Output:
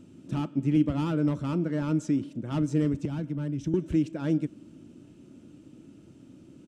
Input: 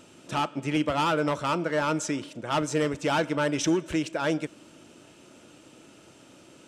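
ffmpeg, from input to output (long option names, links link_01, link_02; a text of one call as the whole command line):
ffmpeg -i in.wav -filter_complex "[0:a]firequalizer=gain_entry='entry(270,0);entry(450,-13);entry(760,-19)':delay=0.05:min_phase=1,asettb=1/sr,asplit=3[link_01][link_02][link_03];[link_01]atrim=end=3.054[link_04];[link_02]atrim=start=3.05:end=3.74,asetpts=PTS-STARTPTS,afade=type=in:duration=0.004:curve=qsin,afade=type=out:start_time=0.686:duration=0.004:curve=qsin,acrossover=split=170[link_05][link_06];[link_06]acompressor=threshold=-42dB:ratio=4[link_07];[link_05][link_07]amix=inputs=2:normalize=0[link_08];[link_03]atrim=start=3.736[link_09];[link_04][link_08]acrossfade=duration=0.004:curve1=hsin:curve2=qsin[link_10];[link_10][link_09]acrossfade=duration=0.004:curve1=qsin:curve2=hsin,volume=6dB" out.wav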